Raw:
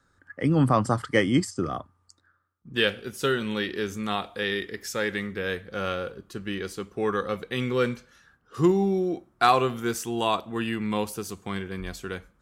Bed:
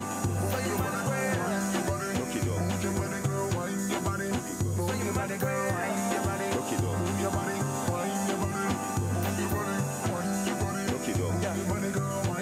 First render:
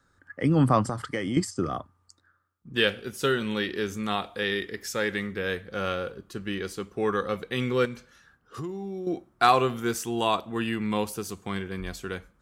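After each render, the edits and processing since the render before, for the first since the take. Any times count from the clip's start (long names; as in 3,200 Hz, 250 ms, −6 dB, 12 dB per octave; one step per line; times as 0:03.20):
0:00.85–0:01.37: downward compressor, threshold −25 dBFS
0:07.85–0:09.07: downward compressor, threshold −32 dBFS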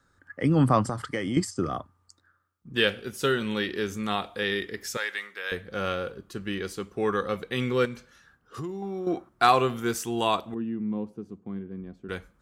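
0:04.97–0:05.52: high-pass filter 920 Hz
0:08.82–0:09.29: parametric band 1,200 Hz +13 dB 1.4 octaves
0:10.54–0:12.09: resonant band-pass 230 Hz, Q 1.5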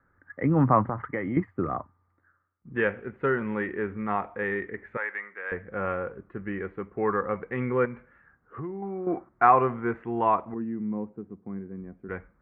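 elliptic low-pass filter 2,100 Hz, stop band 60 dB
dynamic equaliser 960 Hz, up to +5 dB, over −45 dBFS, Q 3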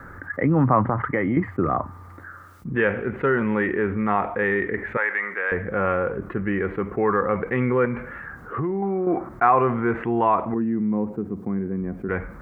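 envelope flattener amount 50%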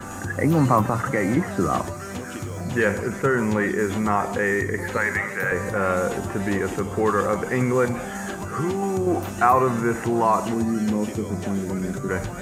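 mix in bed −2.5 dB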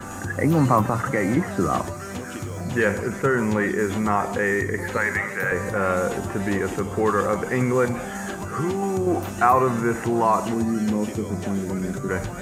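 no processing that can be heard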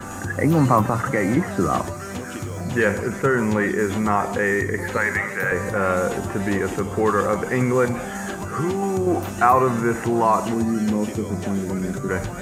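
level +1.5 dB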